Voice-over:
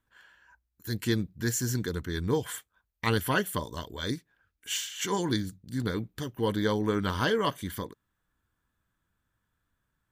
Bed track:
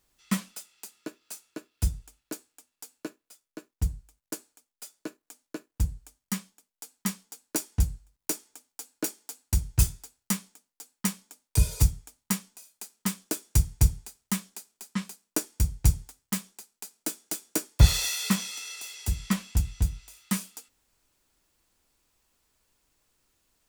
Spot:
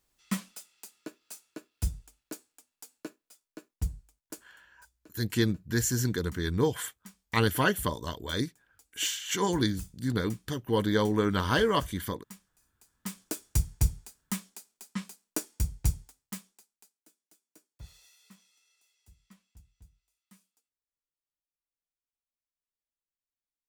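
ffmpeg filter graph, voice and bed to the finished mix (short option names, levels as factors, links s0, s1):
-filter_complex "[0:a]adelay=4300,volume=1.19[s0];[1:a]volume=3.98,afade=t=out:st=3.99:d=0.88:silence=0.149624,afade=t=in:st=12.84:d=0.44:silence=0.158489,afade=t=out:st=15.67:d=1.37:silence=0.0446684[s1];[s0][s1]amix=inputs=2:normalize=0"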